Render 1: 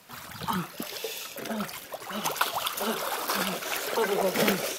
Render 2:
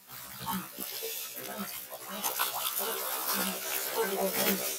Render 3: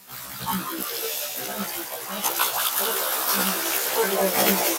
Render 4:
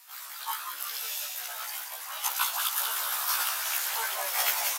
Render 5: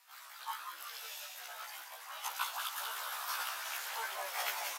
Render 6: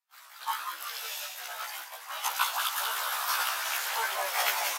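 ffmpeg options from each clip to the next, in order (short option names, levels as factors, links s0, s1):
-af "highshelf=f=6200:g=11.5,afftfilt=real='re*1.73*eq(mod(b,3),0)':imag='im*1.73*eq(mod(b,3),0)':win_size=2048:overlap=0.75,volume=0.631"
-filter_complex "[0:a]asplit=8[s0][s1][s2][s3][s4][s5][s6][s7];[s1]adelay=185,afreqshift=140,volume=0.501[s8];[s2]adelay=370,afreqshift=280,volume=0.285[s9];[s3]adelay=555,afreqshift=420,volume=0.162[s10];[s4]adelay=740,afreqshift=560,volume=0.0933[s11];[s5]adelay=925,afreqshift=700,volume=0.0531[s12];[s6]adelay=1110,afreqshift=840,volume=0.0302[s13];[s7]adelay=1295,afreqshift=980,volume=0.0172[s14];[s0][s8][s9][s10][s11][s12][s13][s14]amix=inputs=8:normalize=0,volume=2.37"
-af "highpass=f=830:w=0.5412,highpass=f=830:w=1.3066,volume=0.562"
-af "aemphasis=mode=reproduction:type=cd,volume=0.501"
-af "agate=range=0.0224:threshold=0.00562:ratio=3:detection=peak,volume=2.82"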